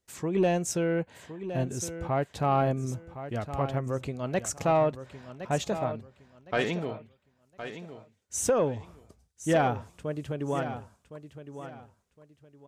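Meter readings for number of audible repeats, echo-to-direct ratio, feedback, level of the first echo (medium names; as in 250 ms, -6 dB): 3, -11.0 dB, 26%, -11.5 dB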